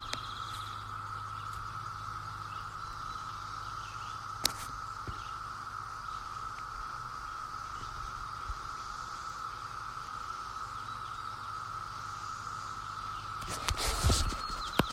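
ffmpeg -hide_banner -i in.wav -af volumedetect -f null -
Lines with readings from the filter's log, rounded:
mean_volume: -38.4 dB
max_volume: -3.7 dB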